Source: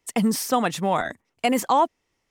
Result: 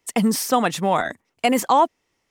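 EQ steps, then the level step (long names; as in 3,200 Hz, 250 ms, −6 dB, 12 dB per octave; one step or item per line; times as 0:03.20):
low-shelf EQ 88 Hz −6.5 dB
+3.0 dB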